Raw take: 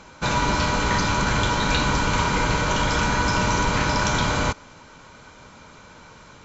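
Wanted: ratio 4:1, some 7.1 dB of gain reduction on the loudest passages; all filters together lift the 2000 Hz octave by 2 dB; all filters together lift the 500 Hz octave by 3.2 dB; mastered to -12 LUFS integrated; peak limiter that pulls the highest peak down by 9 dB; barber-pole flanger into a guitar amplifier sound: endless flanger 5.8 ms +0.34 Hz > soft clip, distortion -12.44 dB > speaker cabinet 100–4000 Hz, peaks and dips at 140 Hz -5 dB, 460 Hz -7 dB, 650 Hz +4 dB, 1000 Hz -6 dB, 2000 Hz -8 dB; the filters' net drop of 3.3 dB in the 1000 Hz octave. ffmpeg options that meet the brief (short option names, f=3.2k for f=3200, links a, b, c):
-filter_complex "[0:a]equalizer=f=500:t=o:g=6,equalizer=f=1k:t=o:g=-3.5,equalizer=f=2k:t=o:g=8,acompressor=threshold=-24dB:ratio=4,alimiter=limit=-22dB:level=0:latency=1,asplit=2[a][b];[b]adelay=5.8,afreqshift=0.34[c];[a][c]amix=inputs=2:normalize=1,asoftclip=threshold=-32.5dB,highpass=100,equalizer=f=140:t=q:w=4:g=-5,equalizer=f=460:t=q:w=4:g=-7,equalizer=f=650:t=q:w=4:g=4,equalizer=f=1k:t=q:w=4:g=-6,equalizer=f=2k:t=q:w=4:g=-8,lowpass=f=4k:w=0.5412,lowpass=f=4k:w=1.3066,volume=29dB"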